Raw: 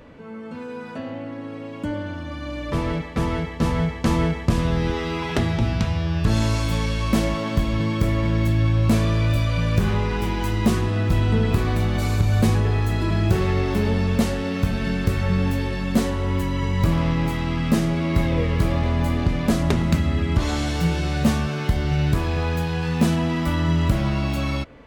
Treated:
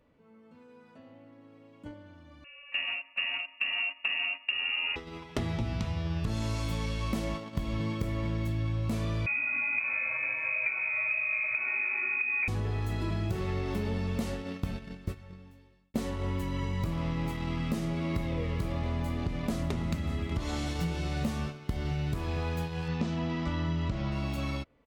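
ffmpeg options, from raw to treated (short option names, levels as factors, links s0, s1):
-filter_complex "[0:a]asettb=1/sr,asplit=3[s0][s1][s2];[s0]atrim=end=2.444[s3];[s1]atrim=start=2.44:end=4.96,asetpts=PTS-STARTPTS,afade=t=in:d=0.004:c=qsin,afade=t=out:st=2.516:d=0.004:c=qsin,lowpass=f=2500:t=q:w=0.5098,lowpass=f=2500:t=q:w=0.6013,lowpass=f=2500:t=q:w=0.9,lowpass=f=2500:t=q:w=2.563,afreqshift=-2900[s4];[s2]atrim=start=4.956[s5];[s3][s4]acrossfade=d=0.004:c1=hsin:c2=qsin[s6];[s6][s5]acrossfade=d=0.004:c1=qsin:c2=hsin,asettb=1/sr,asplit=3[s7][s8][s9];[s7]atrim=end=9.264[s10];[s8]atrim=start=9.26:end=12.48,asetpts=PTS-STARTPTS,afade=t=in:d=0.004:c=qsin,afade=t=out:st=3.216:d=0.004:c=qsin,lowpass=f=2200:t=q:w=0.5098,lowpass=f=2200:t=q:w=0.6013,lowpass=f=2200:t=q:w=0.9,lowpass=f=2200:t=q:w=2.563,afreqshift=-2600[s11];[s9]atrim=start=12.476[s12];[s10][s11]acrossfade=d=0.004:c1=hsin:c2=qsin[s13];[s13][s12]acrossfade=d=0.004:c1=qsin:c2=hsin,asplit=2[s14][s15];[s15]afade=t=in:st=18.82:d=0.01,afade=t=out:st=19.8:d=0.01,aecho=0:1:590|1180|1770|2360|2950|3540:0.188365|0.113019|0.0678114|0.0406868|0.0244121|0.0146473[s16];[s14][s16]amix=inputs=2:normalize=0,asettb=1/sr,asplit=3[s17][s18][s19];[s17]atrim=end=22.884[s20];[s18]atrim=start=22.88:end=24.12,asetpts=PTS-STARTPTS,afade=t=in:d=0.004:c=qsin,afade=t=out:st=1.236:d=0.004:c=qsin,lowpass=f=6100:w=0.5412,lowpass=f=6100:w=1.3066[s21];[s19]atrim=start=24.116[s22];[s20][s21]acrossfade=d=0.004:c1=hsin:c2=qsin[s23];[s23][s22]acrossfade=d=0.004:c1=qsin:c2=hsin,asplit=2[s24][s25];[s24]atrim=end=15.94,asetpts=PTS-STARTPTS,afade=t=out:st=14.49:d=1.45[s26];[s25]atrim=start=15.94,asetpts=PTS-STARTPTS,afade=t=in:d=0.004:c=hsin[s27];[s26][s27]concat=n=2:v=0:a=1,agate=range=0.158:threshold=0.0708:ratio=16:detection=peak,bandreject=f=1600:w=11,acompressor=threshold=0.0708:ratio=6,volume=0.562"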